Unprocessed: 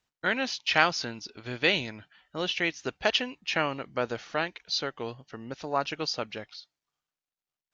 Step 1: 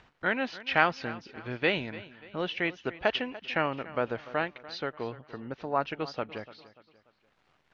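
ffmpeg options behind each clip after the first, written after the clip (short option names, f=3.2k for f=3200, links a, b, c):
-af "acompressor=mode=upward:threshold=-39dB:ratio=2.5,lowpass=2.3k,aecho=1:1:292|584|876:0.133|0.0547|0.0224"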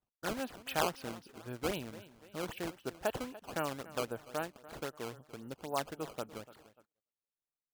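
-af "equalizer=f=2k:t=o:w=0.45:g=-11.5,acrusher=samples=14:mix=1:aa=0.000001:lfo=1:lforange=22.4:lforate=3.8,agate=range=-31dB:threshold=-58dB:ratio=16:detection=peak,volume=-6.5dB"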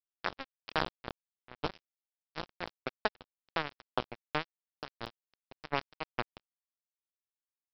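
-af "lowpass=f=3.6k:w=0.5412,lowpass=f=3.6k:w=1.3066,acompressor=threshold=-36dB:ratio=5,aresample=11025,acrusher=bits=4:mix=0:aa=0.5,aresample=44100,volume=9.5dB"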